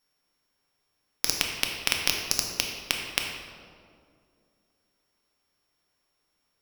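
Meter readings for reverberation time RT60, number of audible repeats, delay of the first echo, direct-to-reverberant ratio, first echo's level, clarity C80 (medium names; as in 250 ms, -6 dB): 2.3 s, no echo, no echo, 1.0 dB, no echo, 4.5 dB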